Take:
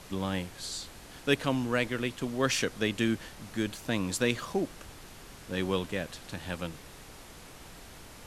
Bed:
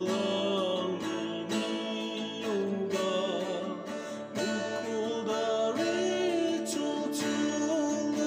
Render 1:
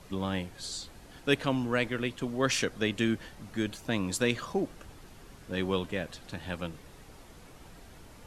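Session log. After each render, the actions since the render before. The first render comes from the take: noise reduction 7 dB, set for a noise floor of -49 dBFS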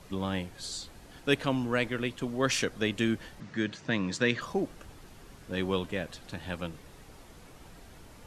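3.40–4.41 s: cabinet simulation 110–6500 Hz, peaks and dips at 150 Hz +8 dB, 760 Hz -4 dB, 1.8 kHz +7 dB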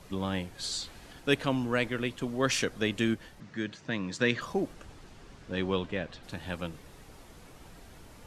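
0.59–1.13 s: peaking EQ 2.7 kHz +5.5 dB 2.7 oct; 3.14–4.19 s: gain -3.5 dB; 4.73–6.22 s: low-pass 10 kHz -> 4.1 kHz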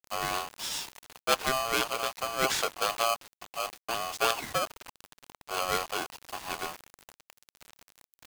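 bit crusher 7-bit; polarity switched at an audio rate 920 Hz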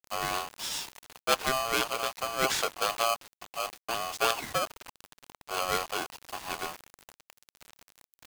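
no audible change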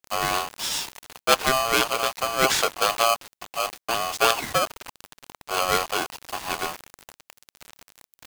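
trim +7 dB

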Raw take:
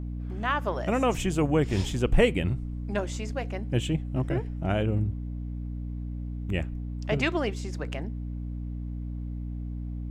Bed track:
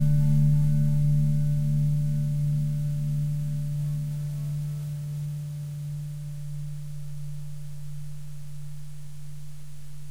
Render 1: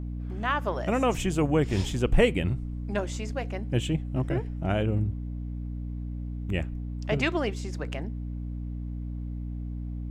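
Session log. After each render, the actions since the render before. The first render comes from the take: no audible change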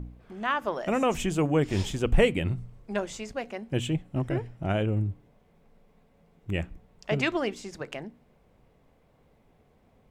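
de-hum 60 Hz, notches 5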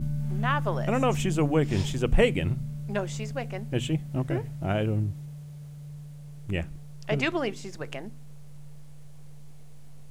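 add bed track -8.5 dB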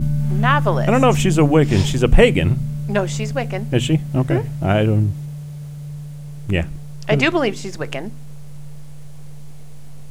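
trim +10.5 dB; peak limiter -1 dBFS, peak gain reduction 2 dB

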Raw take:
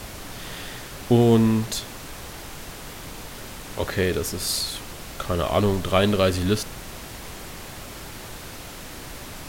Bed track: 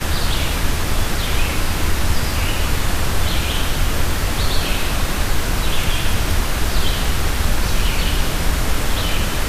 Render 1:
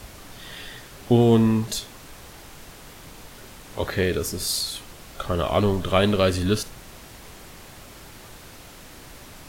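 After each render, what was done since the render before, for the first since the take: noise print and reduce 6 dB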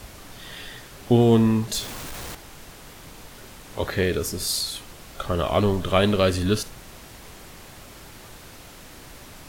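1.74–2.35 s: jump at every zero crossing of -32.5 dBFS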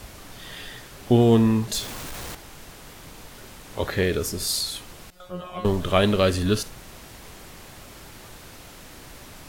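5.10–5.65 s: feedback comb 180 Hz, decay 0.29 s, mix 100%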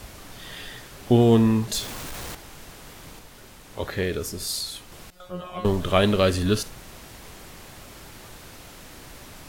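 3.19–4.92 s: gain -3.5 dB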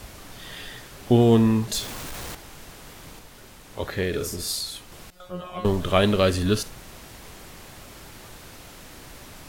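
4.09–4.55 s: doubling 45 ms -4.5 dB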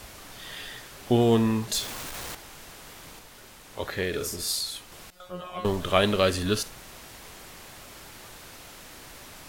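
bass shelf 390 Hz -6.5 dB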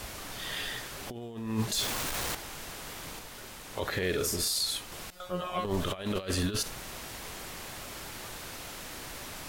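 compressor with a negative ratio -28 dBFS, ratio -0.5; peak limiter -20.5 dBFS, peak gain reduction 7.5 dB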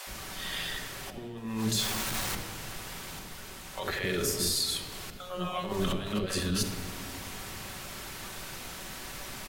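bands offset in time highs, lows 70 ms, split 510 Hz; simulated room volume 3800 m³, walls mixed, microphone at 1.1 m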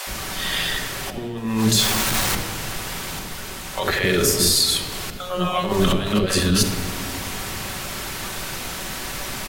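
trim +11.5 dB

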